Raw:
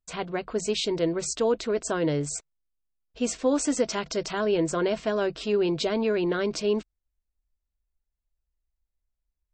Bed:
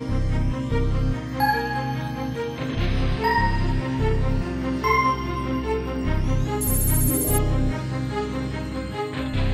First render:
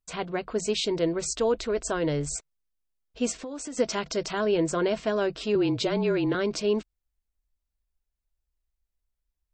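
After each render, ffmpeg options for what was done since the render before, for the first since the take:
ffmpeg -i in.wav -filter_complex "[0:a]asettb=1/sr,asplit=3[link_01][link_02][link_03];[link_01]atrim=end=0.944[link_04];[link_02]atrim=start=0.94:end=2.36,asetpts=PTS-STARTPTS,afade=type=in:duration=0.004:curve=qsin,afade=type=out:start_time=1.416:duration=0.004:curve=qsin,asubboost=boost=12:cutoff=80[link_05];[link_03]atrim=start=2.356[link_06];[link_04][link_05]acrossfade=duration=0.004:curve1=hsin:curve2=qsin[link_07];[link_07][link_06]acrossfade=duration=0.004:curve1=qsin:curve2=hsin,asplit=3[link_08][link_09][link_10];[link_08]afade=type=out:start_time=3.31:duration=0.02[link_11];[link_09]acompressor=threshold=-33dB:ratio=10:attack=3.2:release=140:knee=1:detection=peak,afade=type=in:start_time=3.31:duration=0.02,afade=type=out:start_time=3.77:duration=0.02[link_12];[link_10]afade=type=in:start_time=3.77:duration=0.02[link_13];[link_11][link_12][link_13]amix=inputs=3:normalize=0,asettb=1/sr,asplit=3[link_14][link_15][link_16];[link_14]atrim=end=5.554[link_17];[link_15]atrim=start=5.55:end=6.35,asetpts=PTS-STARTPTS,afade=type=in:duration=0.004:curve=qsin,afade=type=out:start_time=0.796:duration=0.004:curve=qsin,afreqshift=-31[link_18];[link_16]atrim=start=6.346[link_19];[link_17][link_18]acrossfade=duration=0.004:curve1=hsin:curve2=qsin[link_20];[link_20][link_19]acrossfade=duration=0.004:curve1=qsin:curve2=hsin" out.wav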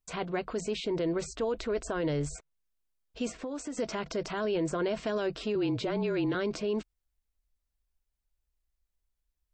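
ffmpeg -i in.wav -filter_complex "[0:a]acrossover=split=2400[link_01][link_02];[link_01]alimiter=limit=-23.5dB:level=0:latency=1:release=35[link_03];[link_02]acompressor=threshold=-44dB:ratio=6[link_04];[link_03][link_04]amix=inputs=2:normalize=0" out.wav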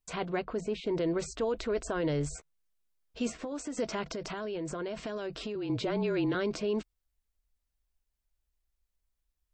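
ffmpeg -i in.wav -filter_complex "[0:a]asettb=1/sr,asplit=3[link_01][link_02][link_03];[link_01]atrim=end=0.424[link_04];[link_02]atrim=start=0.42:end=0.87,asetpts=PTS-STARTPTS,afade=type=in:duration=0.004:curve=qsin,afade=type=out:start_time=0.446:duration=0.004:curve=qsin,highshelf=frequency=2900:gain=-11.5[link_05];[link_03]atrim=start=0.866[link_06];[link_04][link_05]acrossfade=duration=0.004:curve1=hsin:curve2=qsin[link_07];[link_07][link_06]acrossfade=duration=0.004:curve1=qsin:curve2=hsin,asettb=1/sr,asplit=3[link_08][link_09][link_10];[link_08]atrim=end=2.354[link_11];[link_09]atrim=start=2.35:end=3.52,asetpts=PTS-STARTPTS,afade=type=in:duration=0.004:curve=qsin,afade=type=out:start_time=1.166:duration=0.004:curve=qsin,asplit=2[link_12][link_13];[link_13]adelay=13,volume=-7.5dB[link_14];[link_12][link_14]amix=inputs=2:normalize=0,atrim=end_sample=51597[link_15];[link_10]atrim=start=3.516[link_16];[link_11][link_15]acrossfade=duration=0.004:curve1=hsin:curve2=qsin[link_17];[link_17][link_16]acrossfade=duration=0.004:curve1=qsin:curve2=hsin,asettb=1/sr,asplit=3[link_18][link_19][link_20];[link_18]atrim=end=4.144[link_21];[link_19]atrim=start=4.14:end=5.7,asetpts=PTS-STARTPTS,afade=type=in:duration=0.004:curve=qsin,afade=type=out:start_time=1.556:duration=0.004:curve=qsin,acompressor=threshold=-33dB:ratio=5:attack=3.2:release=140:knee=1:detection=peak[link_22];[link_20]atrim=start=5.696[link_23];[link_21][link_22]acrossfade=duration=0.004:curve1=hsin:curve2=qsin[link_24];[link_24][link_23]acrossfade=duration=0.004:curve1=qsin:curve2=hsin" out.wav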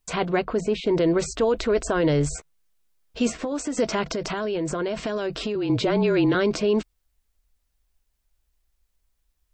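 ffmpeg -i in.wav -af "volume=9.5dB" out.wav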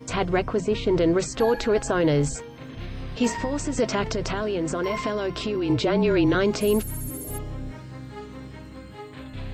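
ffmpeg -i in.wav -i bed.wav -filter_complex "[1:a]volume=-12dB[link_01];[0:a][link_01]amix=inputs=2:normalize=0" out.wav

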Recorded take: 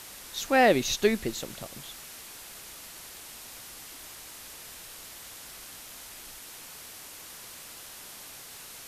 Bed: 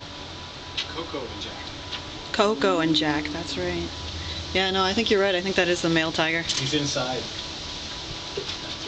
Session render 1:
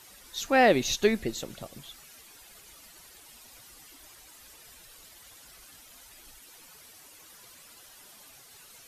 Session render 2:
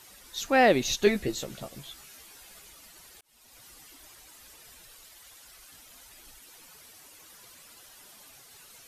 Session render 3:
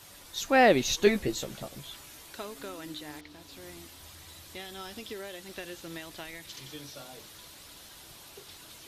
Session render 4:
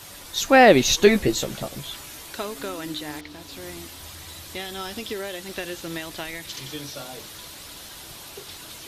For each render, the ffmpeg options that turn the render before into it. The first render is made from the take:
ffmpeg -i in.wav -af "afftdn=noise_reduction=11:noise_floor=-46" out.wav
ffmpeg -i in.wav -filter_complex "[0:a]asettb=1/sr,asplit=3[link_01][link_02][link_03];[link_01]atrim=end=1.054[link_04];[link_02]atrim=start=1.05:end=2.68,asetpts=PTS-STARTPTS,afade=type=in:duration=0.004:curve=qsin,afade=type=out:start_time=1.626:duration=0.004:curve=qsin,asplit=2[link_05][link_06];[link_06]adelay=15,volume=-4dB[link_07];[link_05][link_07]amix=inputs=2:normalize=0,atrim=end_sample=71883[link_08];[link_03]atrim=start=2.676[link_09];[link_04][link_08]acrossfade=duration=0.004:curve1=hsin:curve2=qsin[link_10];[link_10][link_09]acrossfade=duration=0.004:curve1=qsin:curve2=hsin,asettb=1/sr,asplit=3[link_11][link_12][link_13];[link_11]atrim=end=4.954[link_14];[link_12]atrim=start=4.95:end=5.72,asetpts=PTS-STARTPTS,afade=type=in:duration=0.004:curve=qsin,afade=type=out:start_time=0.766:duration=0.004:curve=qsin,equalizer=frequency=160:width=0.4:gain=-6[link_15];[link_13]atrim=start=5.716[link_16];[link_14][link_15]acrossfade=duration=0.004:curve1=hsin:curve2=qsin[link_17];[link_17][link_16]acrossfade=duration=0.004:curve1=qsin:curve2=hsin,asplit=2[link_18][link_19];[link_18]atrim=end=3.21,asetpts=PTS-STARTPTS,afade=type=out:start_time=3.206:duration=0.004:curve=hsin[link_20];[link_19]atrim=start=3.21,asetpts=PTS-STARTPTS,afade=type=in:duration=0.45[link_21];[link_20][link_21]concat=n=2:v=0:a=1" out.wav
ffmpeg -i in.wav -i bed.wav -filter_complex "[1:a]volume=-20dB[link_01];[0:a][link_01]amix=inputs=2:normalize=0" out.wav
ffmpeg -i in.wav -af "volume=9dB,alimiter=limit=-3dB:level=0:latency=1" out.wav

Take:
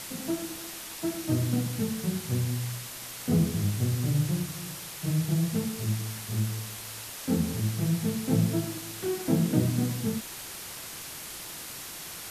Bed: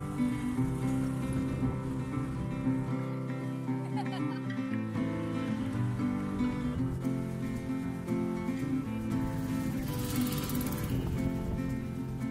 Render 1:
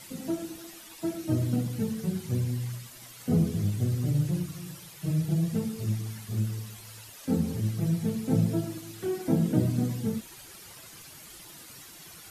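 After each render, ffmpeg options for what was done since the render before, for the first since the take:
ffmpeg -i in.wav -af "afftdn=noise_reduction=11:noise_floor=-41" out.wav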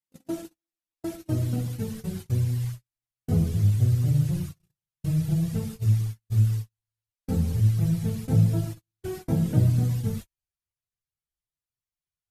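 ffmpeg -i in.wav -af "agate=range=-51dB:threshold=-34dB:ratio=16:detection=peak,asubboost=boost=10.5:cutoff=77" out.wav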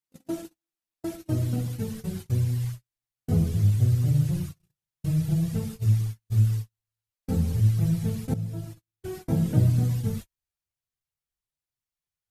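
ffmpeg -i in.wav -filter_complex "[0:a]asplit=2[link_01][link_02];[link_01]atrim=end=8.34,asetpts=PTS-STARTPTS,afade=type=out:start_time=8.336:duration=0.004:curve=hsin:silence=0.188365[link_03];[link_02]atrim=start=8.34,asetpts=PTS-STARTPTS,afade=type=in:duration=1.04:silence=0.188365[link_04];[link_03][link_04]concat=n=2:v=0:a=1" out.wav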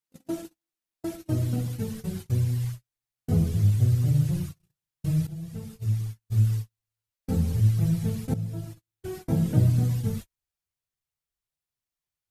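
ffmpeg -i in.wav -filter_complex "[0:a]asplit=2[link_01][link_02];[link_01]atrim=end=5.27,asetpts=PTS-STARTPTS,afade=type=out:start_time=5.266:duration=0.004:curve=hsin:silence=0.177828[link_03];[link_02]atrim=start=5.27,asetpts=PTS-STARTPTS,afade=type=in:duration=1.26:silence=0.177828[link_04];[link_03][link_04]concat=n=2:v=0:a=1" out.wav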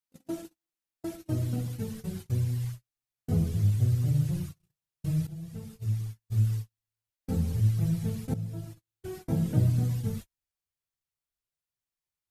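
ffmpeg -i in.wav -af "volume=-3.5dB" out.wav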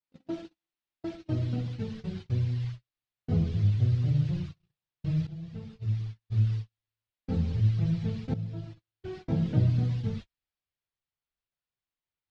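ffmpeg -i in.wav -af "lowpass=frequency=4300:width=0.5412,lowpass=frequency=4300:width=1.3066,adynamicequalizer=threshold=0.002:dfrequency=2100:dqfactor=0.7:tfrequency=2100:tqfactor=0.7:attack=5:release=100:ratio=0.375:range=2:mode=boostabove:tftype=highshelf" out.wav

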